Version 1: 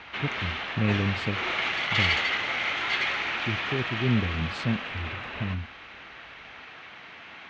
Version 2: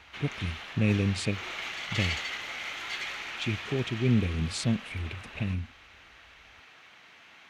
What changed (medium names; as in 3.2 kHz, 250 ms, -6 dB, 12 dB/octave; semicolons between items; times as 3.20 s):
background -11.0 dB; master: remove distance through air 190 m